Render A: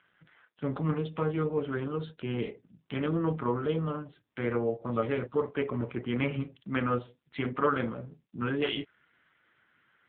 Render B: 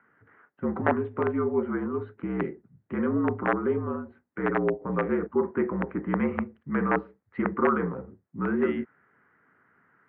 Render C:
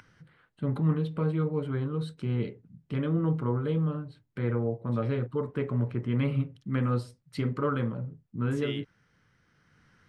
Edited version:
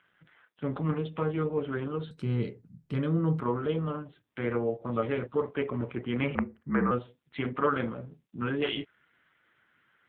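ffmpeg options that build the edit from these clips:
ffmpeg -i take0.wav -i take1.wav -i take2.wav -filter_complex "[0:a]asplit=3[link_01][link_02][link_03];[link_01]atrim=end=2.112[link_04];[2:a]atrim=start=2.108:end=3.402[link_05];[link_02]atrim=start=3.398:end=6.352[link_06];[1:a]atrim=start=6.348:end=6.912[link_07];[link_03]atrim=start=6.908[link_08];[link_04][link_05]acrossfade=duration=0.004:curve1=hsin:curve2=hsin[link_09];[link_09][link_06]acrossfade=duration=0.004:curve1=hsin:curve2=hsin[link_10];[link_10][link_07]acrossfade=duration=0.004:curve1=hsin:curve2=hsin[link_11];[link_11][link_08]acrossfade=duration=0.004:curve1=hsin:curve2=hsin" out.wav

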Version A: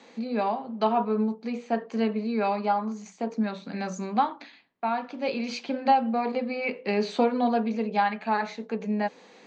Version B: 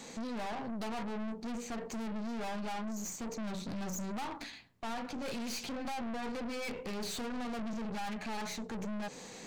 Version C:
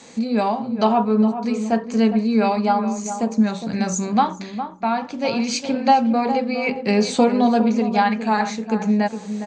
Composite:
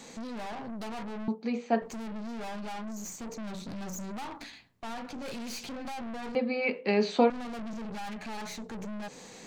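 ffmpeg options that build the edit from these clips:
ffmpeg -i take0.wav -i take1.wav -filter_complex "[0:a]asplit=2[link_01][link_02];[1:a]asplit=3[link_03][link_04][link_05];[link_03]atrim=end=1.282[link_06];[link_01]atrim=start=1.278:end=1.822[link_07];[link_04]atrim=start=1.818:end=6.352[link_08];[link_02]atrim=start=6.348:end=7.302[link_09];[link_05]atrim=start=7.298[link_10];[link_06][link_07]acrossfade=duration=0.004:curve1=hsin:curve2=hsin[link_11];[link_11][link_08]acrossfade=duration=0.004:curve1=hsin:curve2=hsin[link_12];[link_12][link_09]acrossfade=duration=0.004:curve1=hsin:curve2=hsin[link_13];[link_13][link_10]acrossfade=duration=0.004:curve1=hsin:curve2=hsin" out.wav

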